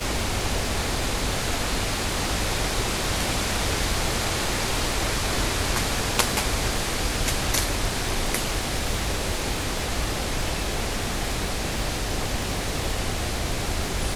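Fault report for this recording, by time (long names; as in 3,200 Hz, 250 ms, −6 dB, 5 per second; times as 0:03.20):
surface crackle 240 per second −32 dBFS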